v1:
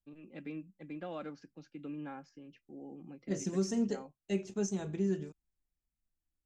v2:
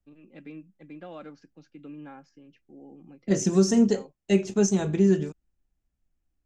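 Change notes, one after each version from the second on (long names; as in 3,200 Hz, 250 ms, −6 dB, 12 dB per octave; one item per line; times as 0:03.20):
second voice +12.0 dB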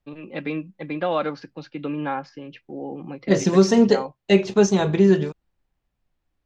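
first voice +10.0 dB
master: add octave-band graphic EQ 125/500/1,000/2,000/4,000/8,000 Hz +6/+7/+10/+5/+12/−8 dB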